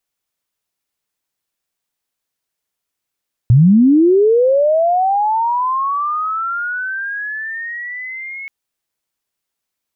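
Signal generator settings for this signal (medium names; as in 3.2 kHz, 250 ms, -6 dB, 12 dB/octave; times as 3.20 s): sweep linear 110 Hz -> 2.2 kHz -5 dBFS -> -26 dBFS 4.98 s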